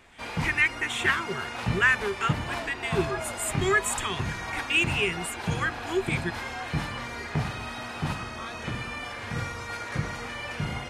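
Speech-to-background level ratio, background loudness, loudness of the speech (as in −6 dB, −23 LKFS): 5.5 dB, −33.0 LKFS, −27.5 LKFS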